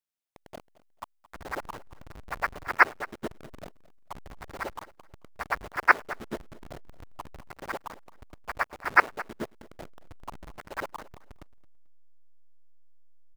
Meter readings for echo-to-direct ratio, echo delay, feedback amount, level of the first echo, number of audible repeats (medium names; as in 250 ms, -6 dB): -19.5 dB, 220 ms, 21%, -19.5 dB, 2